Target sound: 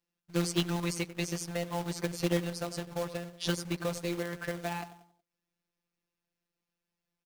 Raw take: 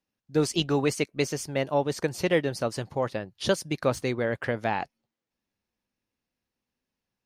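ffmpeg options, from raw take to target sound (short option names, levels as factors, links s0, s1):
-filter_complex "[0:a]afftfilt=real='hypot(re,im)*cos(PI*b)':imag='0':win_size=1024:overlap=0.75,asplit=2[s0][s1];[s1]adelay=92,lowpass=f=1000:p=1,volume=0.224,asplit=2[s2][s3];[s3]adelay=92,lowpass=f=1000:p=1,volume=0.45,asplit=2[s4][s5];[s5]adelay=92,lowpass=f=1000:p=1,volume=0.45,asplit=2[s6][s7];[s7]adelay=92,lowpass=f=1000:p=1,volume=0.45[s8];[s0][s2][s4][s6][s8]amix=inputs=5:normalize=0,acrossover=split=320|3000[s9][s10][s11];[s10]acompressor=threshold=0.0126:ratio=2.5[s12];[s9][s12][s11]amix=inputs=3:normalize=0,acrossover=split=2100[s13][s14];[s13]acrusher=bits=2:mode=log:mix=0:aa=0.000001[s15];[s15][s14]amix=inputs=2:normalize=0"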